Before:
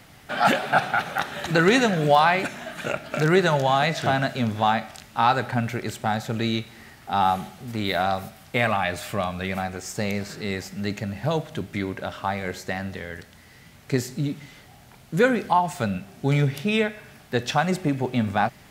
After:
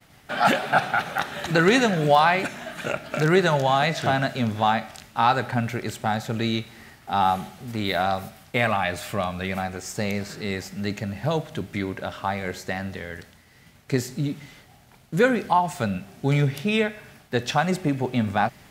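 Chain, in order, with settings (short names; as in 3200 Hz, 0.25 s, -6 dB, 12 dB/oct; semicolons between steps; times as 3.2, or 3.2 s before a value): expander -45 dBFS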